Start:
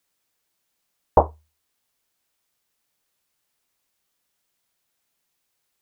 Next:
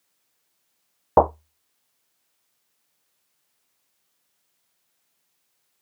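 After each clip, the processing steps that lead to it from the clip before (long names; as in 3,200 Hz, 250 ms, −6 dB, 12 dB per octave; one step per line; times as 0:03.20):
high-pass filter 100 Hz 12 dB per octave
in parallel at −2 dB: brickwall limiter −12.5 dBFS, peak gain reduction 10 dB
on the sum: level −1.5 dB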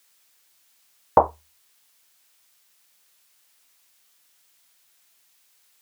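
tilt shelving filter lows −6 dB, about 870 Hz
downward compressor 2 to 1, threshold −17 dBFS, peak gain reduction 4.5 dB
level +4 dB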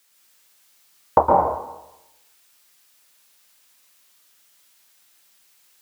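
dense smooth reverb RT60 0.92 s, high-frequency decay 0.85×, pre-delay 105 ms, DRR −2 dB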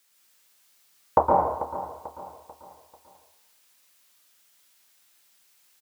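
repeating echo 441 ms, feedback 41%, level −13 dB
level −4 dB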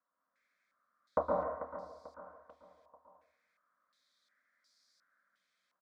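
phaser with its sweep stopped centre 570 Hz, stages 8
low-pass on a step sequencer 2.8 Hz 980–4,700 Hz
level −8 dB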